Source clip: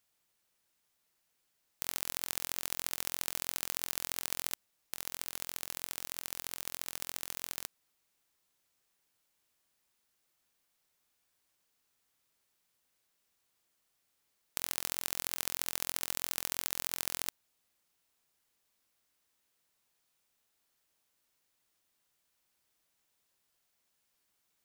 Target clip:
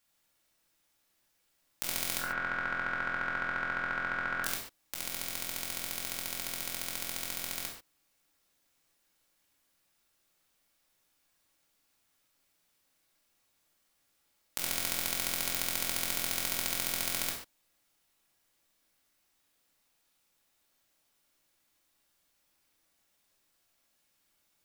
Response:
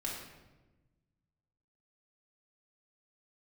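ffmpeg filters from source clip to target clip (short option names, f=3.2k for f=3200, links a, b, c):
-filter_complex "[0:a]asplit=3[a][b][c];[a]afade=t=out:st=2.18:d=0.02[d];[b]lowpass=f=1.5k:t=q:w=7.1,afade=t=in:st=2.18:d=0.02,afade=t=out:st=4.42:d=0.02[e];[c]afade=t=in:st=4.42:d=0.02[f];[d][e][f]amix=inputs=3:normalize=0[g];[1:a]atrim=start_sample=2205,afade=t=out:st=0.2:d=0.01,atrim=end_sample=9261[h];[g][h]afir=irnorm=-1:irlink=0,volume=3.5dB"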